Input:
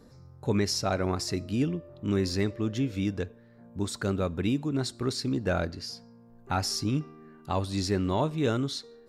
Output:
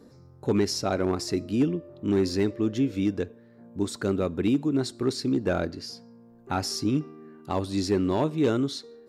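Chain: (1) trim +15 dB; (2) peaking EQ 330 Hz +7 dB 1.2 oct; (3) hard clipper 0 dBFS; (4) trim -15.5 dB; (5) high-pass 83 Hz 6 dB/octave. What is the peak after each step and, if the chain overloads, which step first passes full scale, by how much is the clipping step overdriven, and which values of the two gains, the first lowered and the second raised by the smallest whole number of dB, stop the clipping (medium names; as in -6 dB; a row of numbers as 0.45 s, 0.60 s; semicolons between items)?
-1.5 dBFS, +3.5 dBFS, 0.0 dBFS, -15.5 dBFS, -13.0 dBFS; step 2, 3.5 dB; step 1 +11 dB, step 4 -11.5 dB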